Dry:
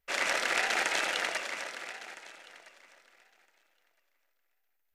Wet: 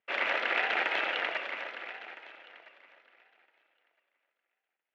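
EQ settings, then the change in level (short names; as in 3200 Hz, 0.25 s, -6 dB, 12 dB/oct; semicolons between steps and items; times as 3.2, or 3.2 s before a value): HPF 260 Hz 12 dB/oct; Chebyshev low-pass 3000 Hz, order 3; +1.0 dB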